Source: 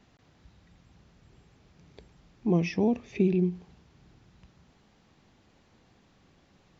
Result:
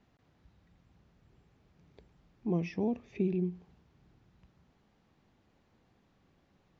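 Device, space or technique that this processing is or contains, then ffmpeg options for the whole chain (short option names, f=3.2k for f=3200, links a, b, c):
behind a face mask: -af "highshelf=f=3.4k:g=-8,volume=-6.5dB"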